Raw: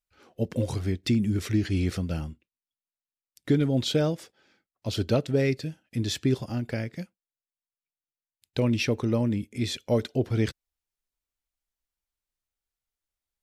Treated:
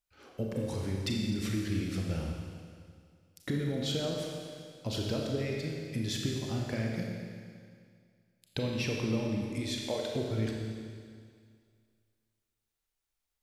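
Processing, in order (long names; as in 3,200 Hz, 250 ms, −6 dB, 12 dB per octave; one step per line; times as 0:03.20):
0:09.70–0:10.12: high-pass filter 450 Hz
downward compressor, threshold −32 dBFS, peak gain reduction 13.5 dB
four-comb reverb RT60 2.1 s, combs from 28 ms, DRR −0.5 dB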